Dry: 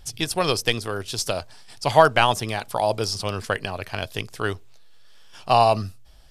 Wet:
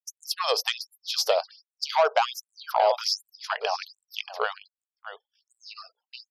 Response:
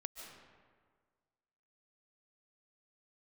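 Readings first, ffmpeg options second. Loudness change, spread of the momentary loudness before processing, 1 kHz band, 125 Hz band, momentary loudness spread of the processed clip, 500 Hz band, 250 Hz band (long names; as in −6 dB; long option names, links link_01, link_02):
−4.0 dB, 13 LU, −5.5 dB, below −40 dB, 22 LU, −4.5 dB, below −30 dB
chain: -filter_complex "[0:a]firequalizer=gain_entry='entry(230,0);entry(760,6);entry(1700,-1);entry(5000,2);entry(8400,-17);entry(13000,0)':delay=0.05:min_phase=1,asplit=2[link_01][link_02];[link_02]aecho=0:1:630:0.237[link_03];[link_01][link_03]amix=inputs=2:normalize=0,asoftclip=type=tanh:threshold=-7dB,acompressor=threshold=-18dB:ratio=6,afftfilt=real='re*gte(hypot(re,im),0.00447)':imag='im*gte(hypot(re,im),0.00447)':win_size=1024:overlap=0.75,aeval=exprs='val(0)+0.00708*(sin(2*PI*60*n/s)+sin(2*PI*2*60*n/s)/2+sin(2*PI*3*60*n/s)/3+sin(2*PI*4*60*n/s)/4+sin(2*PI*5*60*n/s)/5)':channel_layout=same,equalizer=frequency=2000:width_type=o:width=1.5:gain=-4.5,agate=range=-37dB:threshold=-36dB:ratio=16:detection=peak,acontrast=45,afftfilt=real='re*gte(b*sr/1024,400*pow(7400/400,0.5+0.5*sin(2*PI*1.3*pts/sr)))':imag='im*gte(b*sr/1024,400*pow(7400/400,0.5+0.5*sin(2*PI*1.3*pts/sr)))':win_size=1024:overlap=0.75,volume=-2.5dB"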